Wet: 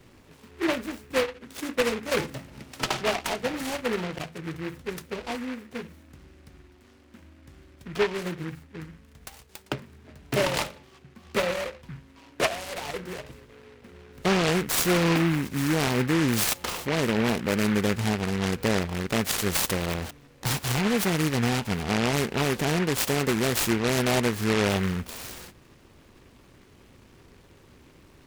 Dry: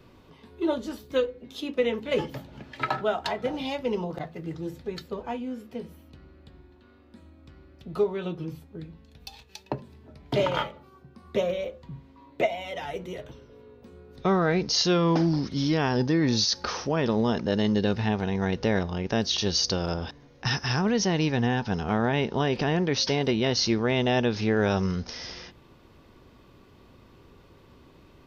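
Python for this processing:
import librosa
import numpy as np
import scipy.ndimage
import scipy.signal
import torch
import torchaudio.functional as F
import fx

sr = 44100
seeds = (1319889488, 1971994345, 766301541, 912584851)

y = fx.noise_mod_delay(x, sr, seeds[0], noise_hz=1600.0, depth_ms=0.17)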